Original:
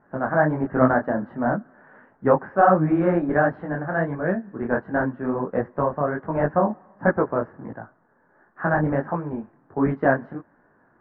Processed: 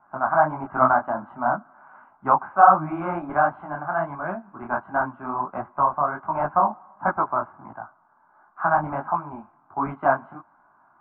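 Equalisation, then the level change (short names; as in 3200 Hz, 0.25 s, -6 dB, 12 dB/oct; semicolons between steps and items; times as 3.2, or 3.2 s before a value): three-band isolator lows -17 dB, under 520 Hz, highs -23 dB, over 2200 Hz; fixed phaser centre 1800 Hz, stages 6; +8.5 dB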